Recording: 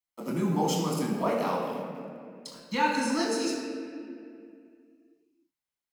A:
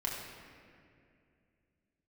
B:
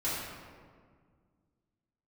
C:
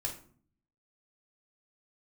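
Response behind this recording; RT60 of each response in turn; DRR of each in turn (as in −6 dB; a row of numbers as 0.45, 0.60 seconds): A; 2.4, 1.8, 0.50 seconds; −4.0, −11.0, −2.0 decibels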